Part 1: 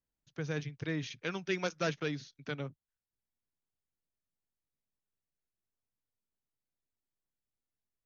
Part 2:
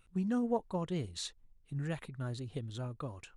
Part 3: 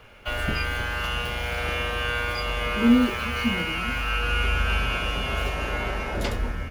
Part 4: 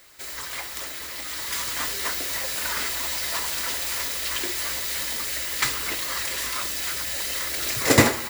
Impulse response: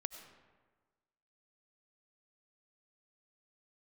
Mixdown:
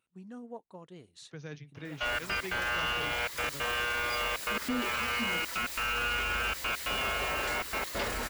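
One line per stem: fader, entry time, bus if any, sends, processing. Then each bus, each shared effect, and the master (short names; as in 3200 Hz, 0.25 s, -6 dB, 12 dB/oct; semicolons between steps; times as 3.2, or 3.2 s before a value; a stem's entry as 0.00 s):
-7.0 dB, 0.95 s, no send, dry
-10.5 dB, 0.00 s, no send, Bessel high-pass 230 Hz
-5.0 dB, 1.75 s, no send, step gate "xxxx.x.xxx" 138 bpm; overdrive pedal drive 18 dB, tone 3400 Hz, clips at -9 dBFS; upward expander 1.5:1, over -36 dBFS
-11.5 dB, 1.85 s, no send, dry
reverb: off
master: limiter -24 dBFS, peak gain reduction 11 dB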